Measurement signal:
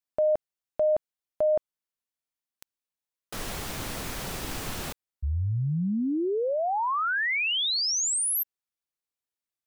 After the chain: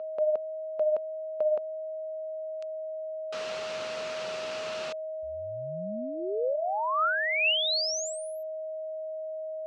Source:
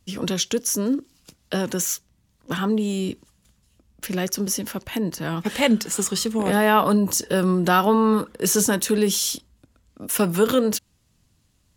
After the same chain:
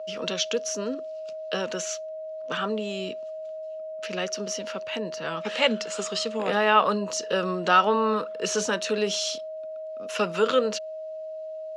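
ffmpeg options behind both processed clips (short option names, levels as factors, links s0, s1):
-af "aeval=exprs='val(0)+0.0316*sin(2*PI*630*n/s)':c=same,highpass=280,equalizer=f=300:t=q:w=4:g=-8,equalizer=f=510:t=q:w=4:g=4,equalizer=f=1300:t=q:w=4:g=6,equalizer=f=2700:t=q:w=4:g=7,equalizer=f=4200:t=q:w=4:g=3,lowpass=f=6300:w=0.5412,lowpass=f=6300:w=1.3066,volume=0.631"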